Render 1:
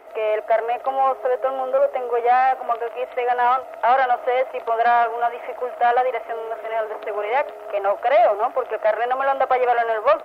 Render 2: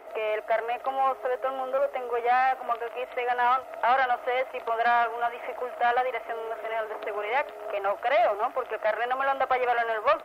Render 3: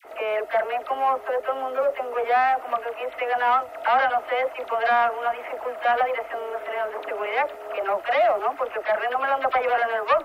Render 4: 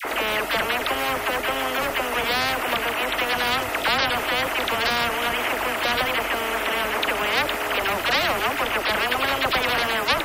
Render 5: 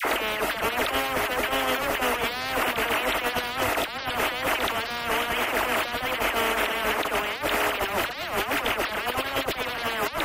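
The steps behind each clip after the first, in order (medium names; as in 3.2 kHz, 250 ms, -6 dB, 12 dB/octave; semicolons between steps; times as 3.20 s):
dynamic bell 560 Hz, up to -7 dB, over -31 dBFS, Q 0.73; trim -1 dB
phase dispersion lows, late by 53 ms, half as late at 1.1 kHz; trim +3 dB
spectrum-flattening compressor 4:1
compressor with a negative ratio -26 dBFS, ratio -0.5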